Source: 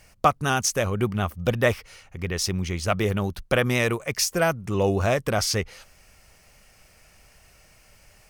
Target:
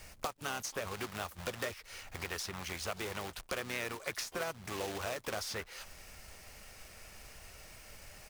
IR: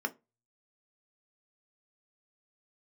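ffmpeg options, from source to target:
-filter_complex "[0:a]equalizer=frequency=140:width_type=o:width=0.36:gain=-7,acompressor=threshold=-36dB:ratio=2.5,acrusher=bits=2:mode=log:mix=0:aa=0.000001,acrossover=split=510|2900|7900[link_01][link_02][link_03][link_04];[link_01]acompressor=threshold=-50dB:ratio=4[link_05];[link_02]acompressor=threshold=-39dB:ratio=4[link_06];[link_03]acompressor=threshold=-46dB:ratio=4[link_07];[link_04]acompressor=threshold=-51dB:ratio=4[link_08];[link_05][link_06][link_07][link_08]amix=inputs=4:normalize=0,asplit=3[link_09][link_10][link_11];[link_10]asetrate=33038,aresample=44100,atempo=1.33484,volume=-10dB[link_12];[link_11]asetrate=88200,aresample=44100,atempo=0.5,volume=-17dB[link_13];[link_09][link_12][link_13]amix=inputs=3:normalize=0,volume=1.5dB"

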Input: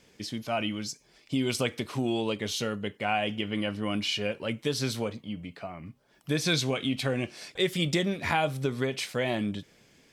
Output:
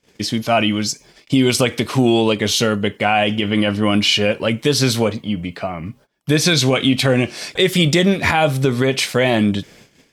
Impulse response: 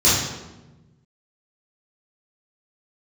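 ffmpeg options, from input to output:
-af "agate=range=-24dB:threshold=-58dB:ratio=16:detection=peak,alimiter=level_in=18dB:limit=-1dB:release=50:level=0:latency=1,volume=-3.5dB"

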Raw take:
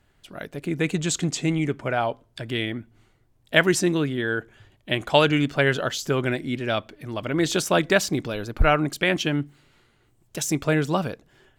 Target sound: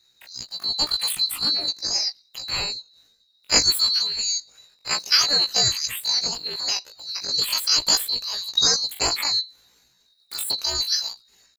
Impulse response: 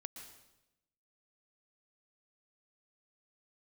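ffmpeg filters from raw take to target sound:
-filter_complex "[0:a]afftfilt=real='real(if(lt(b,920),b+92*(1-2*mod(floor(b/92),2)),b),0)':imag='imag(if(lt(b,920),b+92*(1-2*mod(floor(b/92),2)),b),0)':win_size=2048:overlap=0.75,asetrate=83250,aresample=44100,atempo=0.529732,asplit=2[link_01][link_02];[link_02]adelay=17,volume=-4.5dB[link_03];[link_01][link_03]amix=inputs=2:normalize=0,volume=-1dB"

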